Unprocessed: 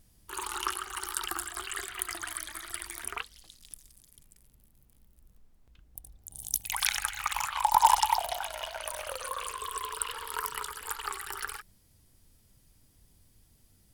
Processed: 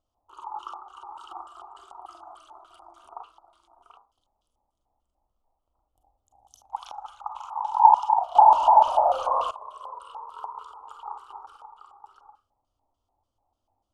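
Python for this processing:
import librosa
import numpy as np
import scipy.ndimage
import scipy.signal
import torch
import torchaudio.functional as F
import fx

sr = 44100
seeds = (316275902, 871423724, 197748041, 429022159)

y = fx.low_shelf(x, sr, hz=130.0, db=-7.5)
y = y + 10.0 ** (-8.0 / 20.0) * np.pad(y, (int(735 * sr / 1000.0), 0))[:len(y)]
y = fx.rev_schroeder(y, sr, rt60_s=0.31, comb_ms=32, drr_db=5.0)
y = fx.leveller(y, sr, passes=5, at=(8.35, 9.51))
y = fx.filter_lfo_lowpass(y, sr, shape='square', hz=3.4, low_hz=840.0, high_hz=3000.0, q=6.6)
y = fx.curve_eq(y, sr, hz=(100.0, 160.0, 290.0, 410.0, 610.0, 1300.0, 1800.0, 6500.0, 11000.0), db=(0, -15, 2, -2, 9, 7, -29, 6, 3))
y = y * librosa.db_to_amplitude(-14.0)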